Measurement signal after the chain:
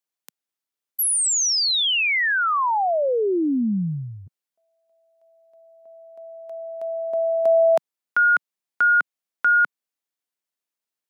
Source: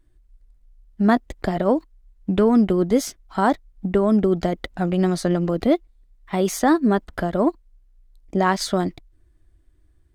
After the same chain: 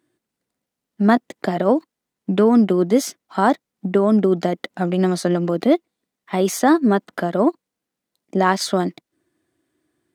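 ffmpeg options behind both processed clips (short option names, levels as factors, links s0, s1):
-af "highpass=f=170:w=0.5412,highpass=f=170:w=1.3066,volume=1.33"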